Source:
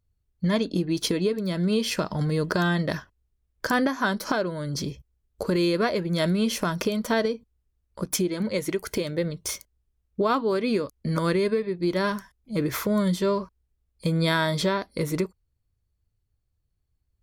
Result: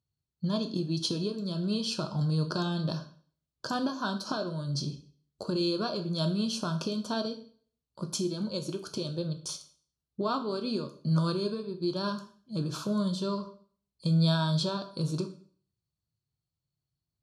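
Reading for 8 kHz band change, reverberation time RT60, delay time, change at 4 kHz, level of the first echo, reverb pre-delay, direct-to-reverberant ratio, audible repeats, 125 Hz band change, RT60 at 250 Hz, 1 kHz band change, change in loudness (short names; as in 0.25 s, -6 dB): -7.0 dB, 0.50 s, none, -2.5 dB, none, 5 ms, 7.0 dB, none, -1.5 dB, 0.50 s, -7.0 dB, -5.5 dB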